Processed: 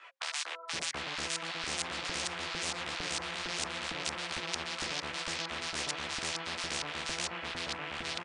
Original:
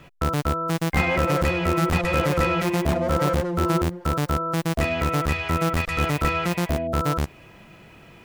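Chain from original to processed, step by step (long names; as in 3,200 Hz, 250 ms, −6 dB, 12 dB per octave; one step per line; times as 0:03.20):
loose part that buzzes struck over −31 dBFS, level −14 dBFS
high-pass filter 94 Hz
hum removal 134.4 Hz, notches 4
in parallel at +2.5 dB: downward compressor, threshold −33 dBFS, peak gain reduction 16 dB
on the sum: multi-voice chorus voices 6, 1 Hz, delay 15 ms, depth 3 ms
on a send: single-tap delay 988 ms −9 dB
on the sum: auto-filter band-pass saw up 2.2 Hz 300–4,000 Hz
linear-phase brick-wall low-pass 10,000 Hz
multiband delay without the direct sound highs, lows 730 ms, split 1,300 Hz
every bin compressed towards the loudest bin 10 to 1
level +1 dB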